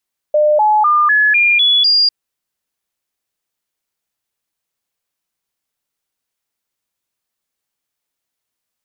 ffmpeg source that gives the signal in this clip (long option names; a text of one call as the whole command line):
ffmpeg -f lavfi -i "aevalsrc='0.376*clip(min(mod(t,0.25),0.25-mod(t,0.25))/0.005,0,1)*sin(2*PI*602*pow(2,floor(t/0.25)/2)*mod(t,0.25))':duration=1.75:sample_rate=44100" out.wav